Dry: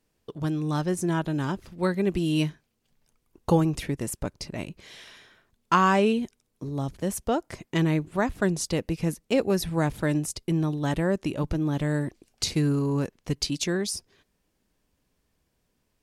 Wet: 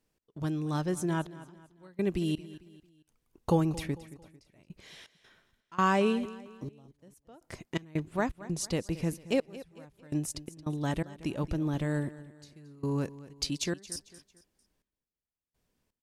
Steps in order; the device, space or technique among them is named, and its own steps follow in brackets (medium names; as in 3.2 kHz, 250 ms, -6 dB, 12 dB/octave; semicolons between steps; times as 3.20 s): trance gate with a delay (trance gate "x.xxxxx....xx.x" 83 bpm -24 dB; feedback delay 224 ms, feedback 39%, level -17 dB); trim -4.5 dB